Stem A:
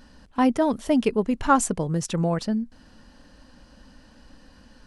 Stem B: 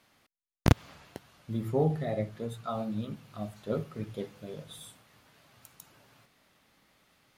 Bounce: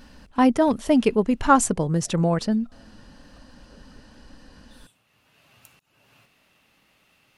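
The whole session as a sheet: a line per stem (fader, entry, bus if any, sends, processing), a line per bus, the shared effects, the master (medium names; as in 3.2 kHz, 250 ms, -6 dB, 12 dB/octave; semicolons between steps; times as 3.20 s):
+2.5 dB, 0.00 s, no send, none
+2.0 dB, 0.00 s, no send, peaking EQ 2.7 kHz +11 dB 0.23 oct; slow attack 359 ms; compression, threshold -40 dBFS, peak gain reduction 13 dB; auto duck -13 dB, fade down 1.85 s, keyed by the first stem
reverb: none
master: none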